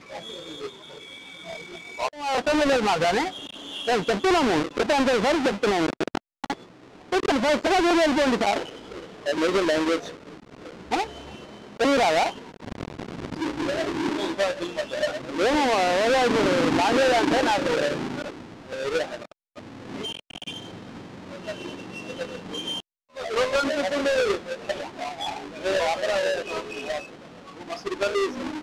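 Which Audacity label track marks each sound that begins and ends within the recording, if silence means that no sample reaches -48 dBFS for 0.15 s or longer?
6.440000	19.320000	sound
19.560000	22.800000	sound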